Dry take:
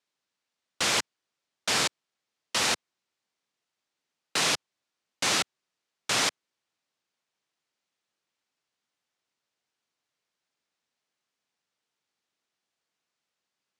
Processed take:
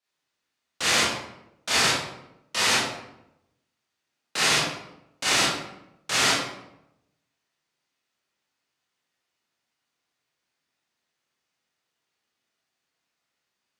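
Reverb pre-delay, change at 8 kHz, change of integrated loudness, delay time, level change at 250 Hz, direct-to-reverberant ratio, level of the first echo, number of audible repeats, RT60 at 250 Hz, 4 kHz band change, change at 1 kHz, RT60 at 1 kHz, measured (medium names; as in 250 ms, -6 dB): 22 ms, +3.5 dB, +4.0 dB, no echo, +5.5 dB, -9.0 dB, no echo, no echo, 1.0 s, +4.5 dB, +5.0 dB, 0.80 s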